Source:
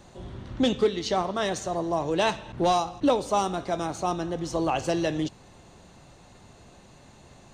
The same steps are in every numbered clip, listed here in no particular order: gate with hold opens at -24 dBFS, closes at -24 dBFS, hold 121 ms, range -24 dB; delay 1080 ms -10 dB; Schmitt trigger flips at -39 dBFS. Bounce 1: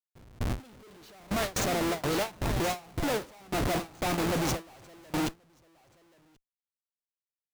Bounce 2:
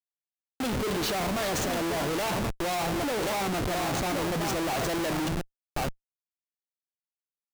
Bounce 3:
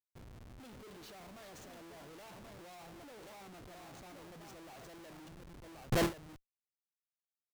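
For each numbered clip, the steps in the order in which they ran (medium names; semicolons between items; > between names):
Schmitt trigger > delay > gate with hold; delay > gate with hold > Schmitt trigger; delay > Schmitt trigger > gate with hold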